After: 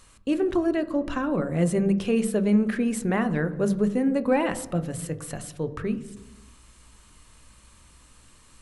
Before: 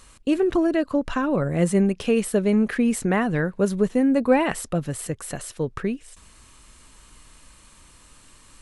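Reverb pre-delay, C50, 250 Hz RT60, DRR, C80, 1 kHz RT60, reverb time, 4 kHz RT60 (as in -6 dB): 16 ms, 14.5 dB, n/a, 10.5 dB, 17.0 dB, 1.0 s, 1.0 s, 0.95 s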